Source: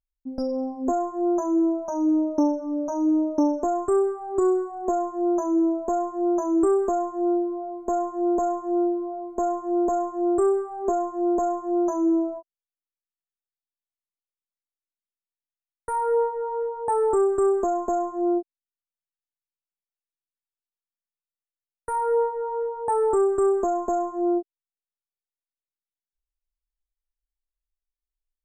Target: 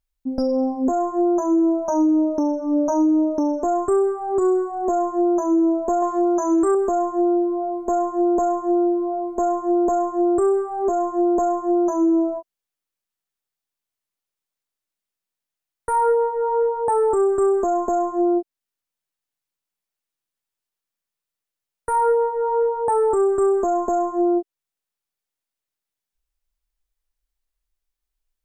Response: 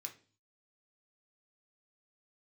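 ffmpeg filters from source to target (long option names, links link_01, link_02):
-filter_complex "[0:a]asettb=1/sr,asplit=3[link_01][link_02][link_03];[link_01]atrim=end=6.024[link_04];[link_02]atrim=start=6.02:end=6.75,asetpts=PTS-STARTPTS,afade=type=in:duration=0.004:curve=qsin,afade=type=out:start_time=0.726:duration=0.004:curve=qsin,equalizer=frequency=3500:width_type=o:width=2.8:gain=12.5[link_05];[link_03]atrim=start=6.746[link_06];[link_04][link_05]acrossfade=duration=0.004:curve1=hsin:curve2=qsin[link_07];[link_07][link_06]acrossfade=duration=0.004:curve1=qsin:curve2=hsin,alimiter=limit=-21dB:level=0:latency=1:release=302,volume=8dB"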